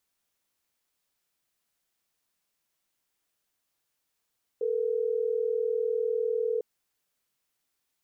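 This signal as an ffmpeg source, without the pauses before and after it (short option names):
-f lavfi -i "aevalsrc='0.0398*(sin(2*PI*440*t)+sin(2*PI*480*t))*clip(min(mod(t,6),2-mod(t,6))/0.005,0,1)':d=3.12:s=44100"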